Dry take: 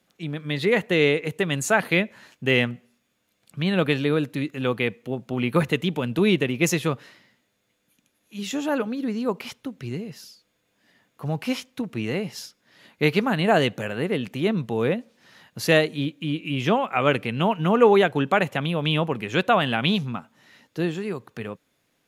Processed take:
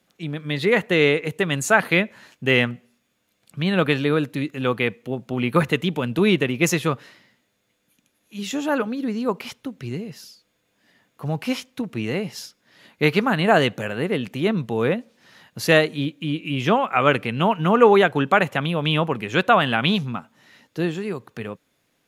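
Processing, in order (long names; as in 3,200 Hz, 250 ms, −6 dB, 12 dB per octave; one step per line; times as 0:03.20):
dynamic equaliser 1,300 Hz, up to +4 dB, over −33 dBFS, Q 1.3
level +1.5 dB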